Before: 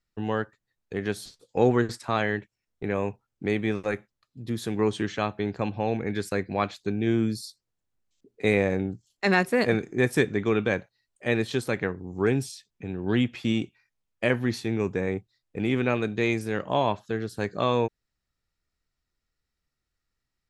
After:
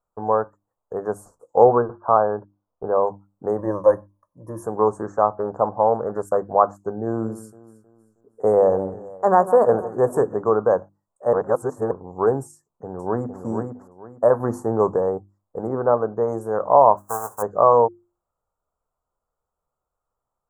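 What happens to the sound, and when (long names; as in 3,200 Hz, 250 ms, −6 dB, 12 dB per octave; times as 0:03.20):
0:01.64–0:03.07: linear-phase brick-wall low-pass 1,700 Hz
0:03.58–0:04.63: EQ curve with evenly spaced ripples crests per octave 1.2, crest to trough 14 dB
0:05.36–0:06.37: highs frequency-modulated by the lows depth 0.23 ms
0:07.05–0:10.34: delay that swaps between a low-pass and a high-pass 158 ms, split 1,500 Hz, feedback 60%, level −13.5 dB
0:11.33–0:11.91: reverse
0:12.53–0:13.41: delay throw 460 ms, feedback 25%, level −5.5 dB
0:14.40–0:14.96: clip gain +4.5 dB
0:15.67–0:16.28: high-frequency loss of the air 130 metres
0:16.97–0:17.41: spectral envelope flattened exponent 0.1
whole clip: Chebyshev band-stop filter 1,100–7,200 Hz, order 3; flat-topped bell 910 Hz +15.5 dB 2.3 octaves; mains-hum notches 50/100/150/200/250/300/350 Hz; level −2.5 dB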